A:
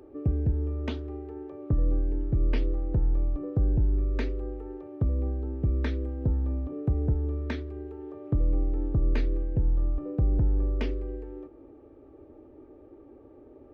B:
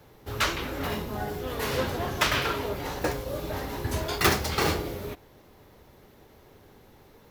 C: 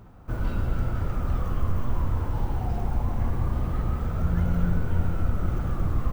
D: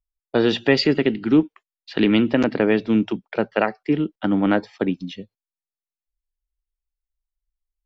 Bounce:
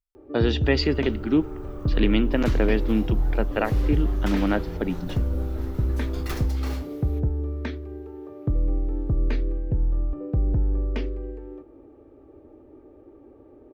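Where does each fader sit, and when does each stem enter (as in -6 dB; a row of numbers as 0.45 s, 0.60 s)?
+1.5 dB, -13.5 dB, -11.0 dB, -5.0 dB; 0.15 s, 2.05 s, 0.35 s, 0.00 s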